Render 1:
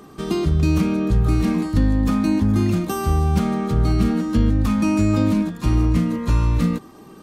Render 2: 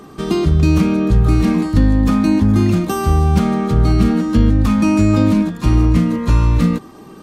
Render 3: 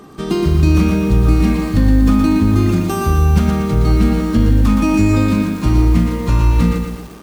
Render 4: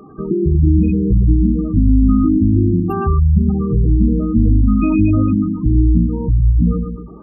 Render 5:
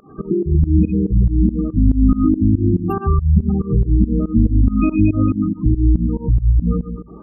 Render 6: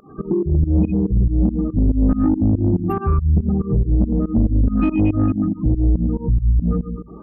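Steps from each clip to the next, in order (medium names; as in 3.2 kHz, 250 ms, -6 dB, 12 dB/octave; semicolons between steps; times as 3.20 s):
treble shelf 9 kHz -4.5 dB; trim +5 dB
bit-crushed delay 118 ms, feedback 55%, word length 6-bit, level -5 dB; trim -1 dB
spectral gate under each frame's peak -15 dB strong
volume shaper 141 bpm, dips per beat 2, -21 dB, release 150 ms
saturation -8.5 dBFS, distortion -16 dB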